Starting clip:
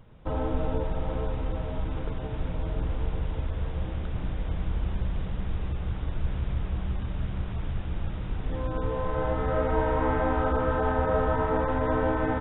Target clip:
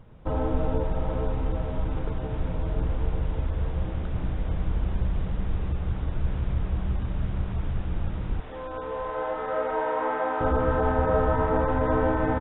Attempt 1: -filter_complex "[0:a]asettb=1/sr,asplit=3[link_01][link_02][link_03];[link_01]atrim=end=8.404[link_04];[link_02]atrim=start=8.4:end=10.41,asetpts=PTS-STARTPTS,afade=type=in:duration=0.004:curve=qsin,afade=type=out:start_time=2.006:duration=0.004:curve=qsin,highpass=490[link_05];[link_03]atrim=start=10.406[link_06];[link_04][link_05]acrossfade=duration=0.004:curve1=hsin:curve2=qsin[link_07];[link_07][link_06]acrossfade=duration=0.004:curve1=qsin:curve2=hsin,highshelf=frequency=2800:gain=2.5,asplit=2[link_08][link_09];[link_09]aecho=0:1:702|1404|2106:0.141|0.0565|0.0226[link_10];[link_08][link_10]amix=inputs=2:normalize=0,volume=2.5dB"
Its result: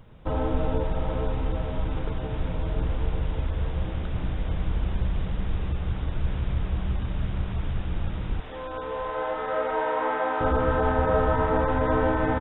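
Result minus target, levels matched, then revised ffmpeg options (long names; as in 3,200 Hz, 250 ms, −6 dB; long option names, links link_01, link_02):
4,000 Hz band +5.5 dB
-filter_complex "[0:a]asettb=1/sr,asplit=3[link_01][link_02][link_03];[link_01]atrim=end=8.404[link_04];[link_02]atrim=start=8.4:end=10.41,asetpts=PTS-STARTPTS,afade=type=in:duration=0.004:curve=qsin,afade=type=out:start_time=2.006:duration=0.004:curve=qsin,highpass=490[link_05];[link_03]atrim=start=10.406[link_06];[link_04][link_05]acrossfade=duration=0.004:curve1=hsin:curve2=qsin[link_07];[link_07][link_06]acrossfade=duration=0.004:curve1=qsin:curve2=hsin,highshelf=frequency=2800:gain=-7.5,asplit=2[link_08][link_09];[link_09]aecho=0:1:702|1404|2106:0.141|0.0565|0.0226[link_10];[link_08][link_10]amix=inputs=2:normalize=0,volume=2.5dB"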